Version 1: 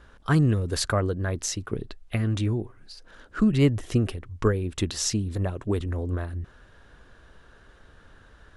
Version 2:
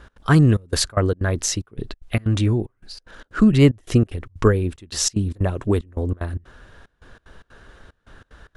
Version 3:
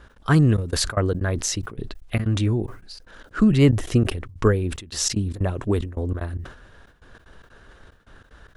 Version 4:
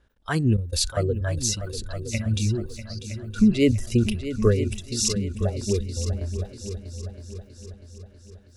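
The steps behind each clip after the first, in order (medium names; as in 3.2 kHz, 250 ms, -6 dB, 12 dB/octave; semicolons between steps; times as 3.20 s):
trance gate "x.xxxxx..xx.x" 186 bpm -24 dB; trim +6.5 dB
decay stretcher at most 100 dB/s; trim -2.5 dB
spectral noise reduction 15 dB; peaking EQ 1.2 kHz -7 dB 0.84 oct; on a send: multi-head delay 322 ms, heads second and third, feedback 46%, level -12 dB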